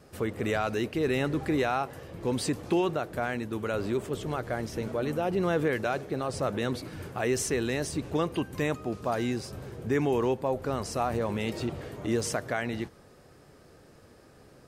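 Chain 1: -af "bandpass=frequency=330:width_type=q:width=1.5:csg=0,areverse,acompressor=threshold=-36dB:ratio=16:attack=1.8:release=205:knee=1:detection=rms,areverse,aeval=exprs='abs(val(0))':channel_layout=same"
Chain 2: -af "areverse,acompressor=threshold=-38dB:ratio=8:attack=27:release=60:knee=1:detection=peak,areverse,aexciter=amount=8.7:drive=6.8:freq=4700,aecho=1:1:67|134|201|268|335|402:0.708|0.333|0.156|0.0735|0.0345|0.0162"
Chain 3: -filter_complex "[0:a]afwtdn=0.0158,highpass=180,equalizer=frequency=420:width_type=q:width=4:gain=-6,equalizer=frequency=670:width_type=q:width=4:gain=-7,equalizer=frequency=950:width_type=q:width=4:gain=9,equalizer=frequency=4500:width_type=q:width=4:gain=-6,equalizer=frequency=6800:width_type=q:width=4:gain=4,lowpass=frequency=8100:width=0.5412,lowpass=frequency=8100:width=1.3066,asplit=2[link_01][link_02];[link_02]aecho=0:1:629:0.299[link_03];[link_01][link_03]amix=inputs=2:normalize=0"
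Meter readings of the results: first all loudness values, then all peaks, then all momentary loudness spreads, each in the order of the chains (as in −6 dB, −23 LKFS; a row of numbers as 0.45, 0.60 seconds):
−48.5, −25.5, −32.5 LKFS; −32.0, −4.0, −15.0 dBFS; 7, 19, 9 LU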